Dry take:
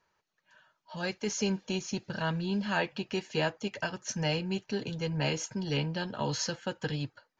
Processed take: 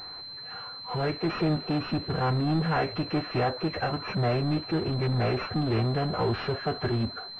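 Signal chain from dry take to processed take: formant-preserving pitch shift -4 st; power-law waveshaper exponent 0.5; class-D stage that switches slowly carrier 4.1 kHz

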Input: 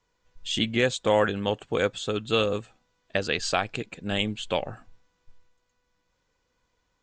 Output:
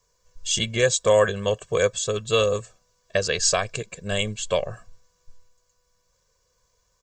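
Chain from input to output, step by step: resonant high shelf 4.6 kHz +9 dB, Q 1.5; comb 1.8 ms, depth 92%

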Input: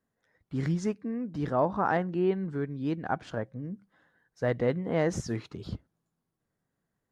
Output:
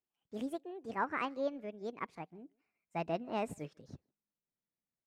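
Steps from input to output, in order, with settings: gliding tape speed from 163% -> 118%; speakerphone echo 150 ms, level -23 dB; upward expansion 1.5:1, over -43 dBFS; trim -7.5 dB

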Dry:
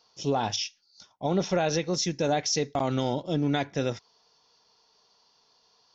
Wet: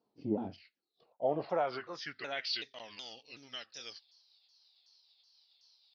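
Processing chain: sawtooth pitch modulation -5 st, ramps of 374 ms; band-pass sweep 260 Hz -> 4.9 kHz, 0.55–3.03 s; trim +2.5 dB

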